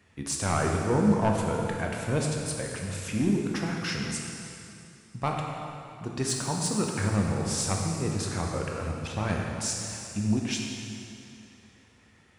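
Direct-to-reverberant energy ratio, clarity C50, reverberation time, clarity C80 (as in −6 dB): 0.0 dB, 1.0 dB, 2.7 s, 2.0 dB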